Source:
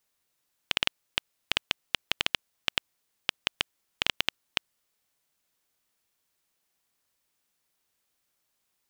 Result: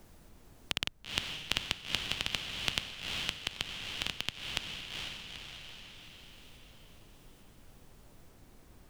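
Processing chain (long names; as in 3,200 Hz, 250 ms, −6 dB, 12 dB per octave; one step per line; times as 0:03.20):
bass and treble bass +11 dB, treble +7 dB
sample-and-hold tremolo
high-shelf EQ 7,900 Hz −5 dB
on a send: feedback delay with all-pass diffusion 452 ms, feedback 41%, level −4 dB
on the sum: background noise brown −57 dBFS
multiband upward and downward compressor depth 40%
level −4 dB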